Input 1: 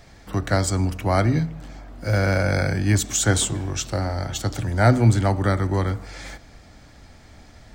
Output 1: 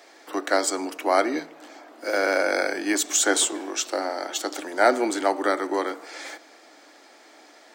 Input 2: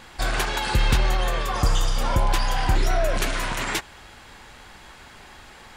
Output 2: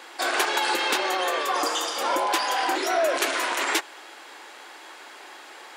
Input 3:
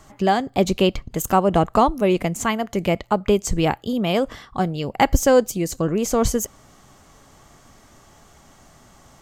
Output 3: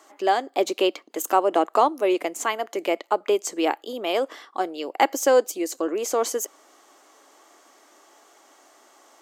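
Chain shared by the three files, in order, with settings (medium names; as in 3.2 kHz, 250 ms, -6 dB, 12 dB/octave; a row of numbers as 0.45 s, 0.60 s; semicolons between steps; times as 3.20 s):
elliptic high-pass 310 Hz, stop band 70 dB; normalise loudness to -24 LUFS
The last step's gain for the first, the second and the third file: +2.0 dB, +3.0 dB, -1.5 dB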